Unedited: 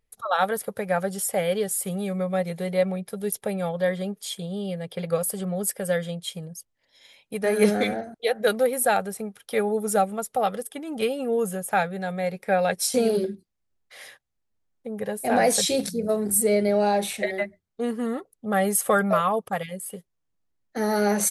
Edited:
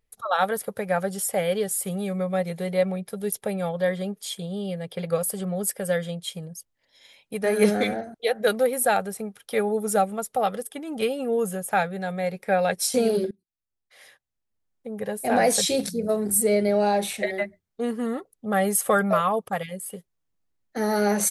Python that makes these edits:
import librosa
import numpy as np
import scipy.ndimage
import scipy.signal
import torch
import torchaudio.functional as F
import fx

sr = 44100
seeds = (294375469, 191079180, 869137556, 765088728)

y = fx.edit(x, sr, fx.fade_in_from(start_s=13.31, length_s=1.83, floor_db=-23.0), tone=tone)